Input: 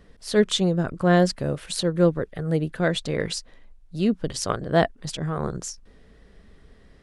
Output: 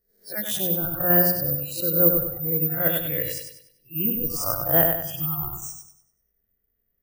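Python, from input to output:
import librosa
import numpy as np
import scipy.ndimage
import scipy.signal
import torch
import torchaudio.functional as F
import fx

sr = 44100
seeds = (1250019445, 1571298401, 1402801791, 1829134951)

p1 = fx.spec_swells(x, sr, rise_s=0.56)
p2 = fx.hum_notches(p1, sr, base_hz=60, count=7)
p3 = fx.noise_reduce_blind(p2, sr, reduce_db=27)
p4 = fx.graphic_eq_15(p3, sr, hz=(250, 1000, 4000, 10000), db=(-3, -6, -10, 3))
p5 = fx.level_steps(p4, sr, step_db=10)
p6 = p4 + (p5 * 10.0 ** (-3.0 / 20.0))
p7 = fx.echo_bbd(p6, sr, ms=97, stages=4096, feedback_pct=40, wet_db=-5)
p8 = (np.kron(scipy.signal.resample_poly(p7, 1, 3), np.eye(3)[0]) * 3)[:len(p7)]
y = p8 * 10.0 ** (-7.0 / 20.0)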